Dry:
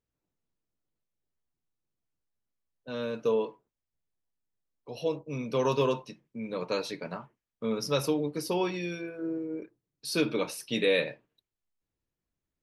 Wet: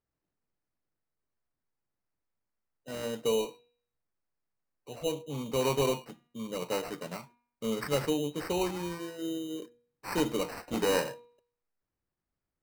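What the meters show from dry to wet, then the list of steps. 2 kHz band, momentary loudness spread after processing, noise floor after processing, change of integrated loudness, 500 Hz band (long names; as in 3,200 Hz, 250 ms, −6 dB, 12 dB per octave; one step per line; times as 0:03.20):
−3.5 dB, 14 LU, below −85 dBFS, −1.5 dB, −2.0 dB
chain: decimation without filtering 13×
hum removal 239.9 Hz, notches 17
level −1.5 dB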